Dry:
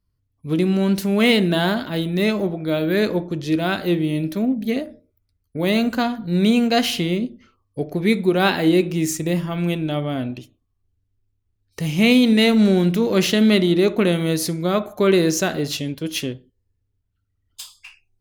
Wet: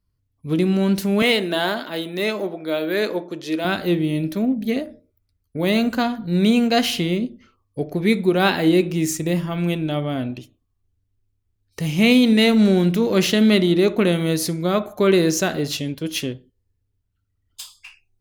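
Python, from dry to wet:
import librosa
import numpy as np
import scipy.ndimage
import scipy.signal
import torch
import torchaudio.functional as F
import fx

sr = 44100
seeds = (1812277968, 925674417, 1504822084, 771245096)

y = fx.highpass(x, sr, hz=340.0, slope=12, at=(1.22, 3.65))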